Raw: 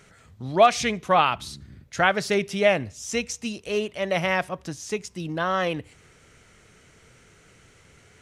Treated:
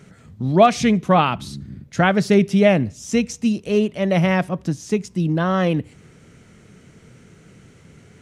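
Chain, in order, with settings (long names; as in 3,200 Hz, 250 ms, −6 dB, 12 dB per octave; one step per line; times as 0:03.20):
parametric band 190 Hz +14 dB 2.1 octaves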